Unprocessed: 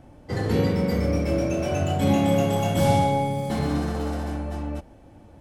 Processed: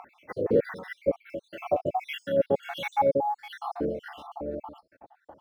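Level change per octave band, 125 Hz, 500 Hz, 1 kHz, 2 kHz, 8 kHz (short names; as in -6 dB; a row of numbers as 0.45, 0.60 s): -19.0 dB, -1.5 dB, -3.5 dB, -4.0 dB, under -20 dB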